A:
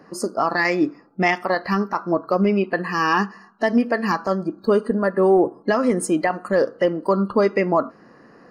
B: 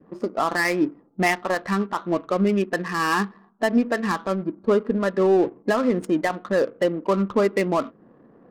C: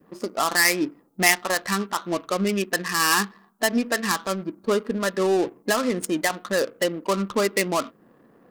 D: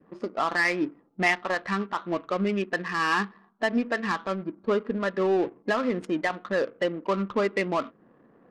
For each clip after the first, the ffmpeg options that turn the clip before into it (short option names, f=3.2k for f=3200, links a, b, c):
-af "adynamicsmooth=sensitivity=3.5:basefreq=620,adynamicequalizer=threshold=0.0224:dfrequency=780:dqfactor=1.5:tfrequency=780:tqfactor=1.5:attack=5:release=100:ratio=0.375:range=2.5:mode=cutabove:tftype=bell,volume=-1.5dB"
-af "crystalizer=i=7:c=0,volume=-4dB"
-af "lowpass=2.7k,volume=-2.5dB"